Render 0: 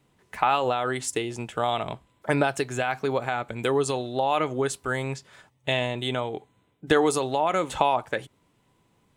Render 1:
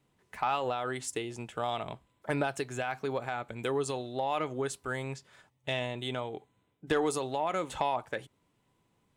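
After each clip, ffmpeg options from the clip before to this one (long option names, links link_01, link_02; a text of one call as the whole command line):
ffmpeg -i in.wav -af "asoftclip=type=tanh:threshold=-9.5dB,volume=-7dB" out.wav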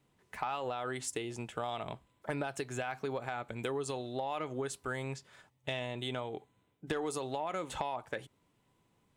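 ffmpeg -i in.wav -af "acompressor=threshold=-33dB:ratio=4" out.wav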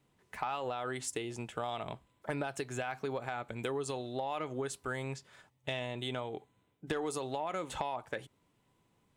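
ffmpeg -i in.wav -af anull out.wav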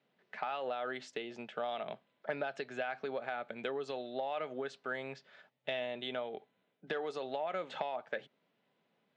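ffmpeg -i in.wav -af "highpass=frequency=190:width=0.5412,highpass=frequency=190:width=1.3066,equalizer=frequency=310:width_type=q:width=4:gain=-9,equalizer=frequency=620:width_type=q:width=4:gain=5,equalizer=frequency=1000:width_type=q:width=4:gain=-7,equalizer=frequency=1600:width_type=q:width=4:gain=3,lowpass=frequency=4500:width=0.5412,lowpass=frequency=4500:width=1.3066,volume=-1dB" out.wav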